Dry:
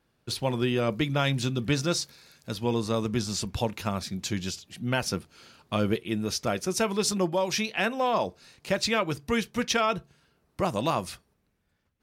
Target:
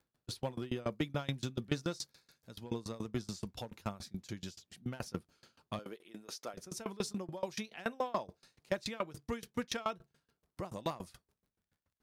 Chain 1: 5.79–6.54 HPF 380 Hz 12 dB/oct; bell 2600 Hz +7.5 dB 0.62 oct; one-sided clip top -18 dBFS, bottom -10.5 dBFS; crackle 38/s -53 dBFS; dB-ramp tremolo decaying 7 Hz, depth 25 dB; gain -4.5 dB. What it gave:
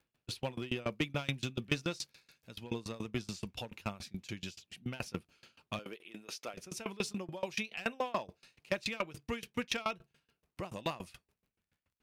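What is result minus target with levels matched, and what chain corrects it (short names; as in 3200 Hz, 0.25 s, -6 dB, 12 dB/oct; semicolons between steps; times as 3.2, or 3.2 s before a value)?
2000 Hz band +4.5 dB
5.79–6.54 HPF 380 Hz 12 dB/oct; bell 2600 Hz -4 dB 0.62 oct; one-sided clip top -18 dBFS, bottom -10.5 dBFS; crackle 38/s -53 dBFS; dB-ramp tremolo decaying 7 Hz, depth 25 dB; gain -4.5 dB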